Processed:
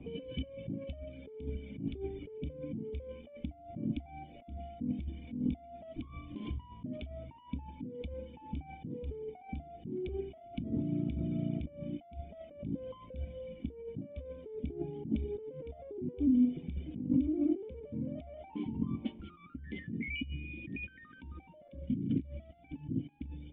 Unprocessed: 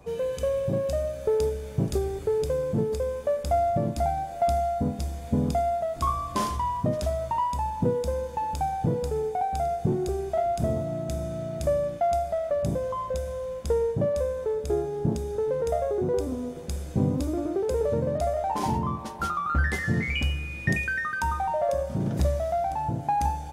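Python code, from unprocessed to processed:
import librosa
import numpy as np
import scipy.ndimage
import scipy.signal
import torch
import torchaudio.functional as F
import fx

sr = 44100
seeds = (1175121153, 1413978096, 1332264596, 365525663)

y = fx.dereverb_blind(x, sr, rt60_s=1.5)
y = fx.over_compress(y, sr, threshold_db=-35.0, ratio=-1.0)
y = fx.formant_cascade(y, sr, vowel='i')
y = fx.peak_eq(y, sr, hz=810.0, db=fx.steps((0.0, 3.0), (19.14, -7.0), (21.68, -14.5)), octaves=0.67)
y = F.gain(torch.from_numpy(y), 8.5).numpy()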